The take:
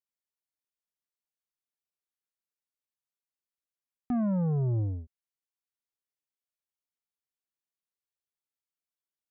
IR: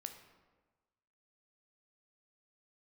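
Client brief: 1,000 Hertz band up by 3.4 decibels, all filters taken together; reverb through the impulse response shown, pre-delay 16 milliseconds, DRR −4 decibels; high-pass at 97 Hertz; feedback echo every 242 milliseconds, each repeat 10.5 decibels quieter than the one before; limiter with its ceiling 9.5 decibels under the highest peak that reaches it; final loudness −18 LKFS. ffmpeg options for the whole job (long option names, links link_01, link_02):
-filter_complex "[0:a]highpass=97,equalizer=frequency=1000:width_type=o:gain=5,alimiter=level_in=6.5dB:limit=-24dB:level=0:latency=1,volume=-6.5dB,aecho=1:1:242|484|726:0.299|0.0896|0.0269,asplit=2[link_01][link_02];[1:a]atrim=start_sample=2205,adelay=16[link_03];[link_02][link_03]afir=irnorm=-1:irlink=0,volume=8dB[link_04];[link_01][link_04]amix=inputs=2:normalize=0,volume=15dB"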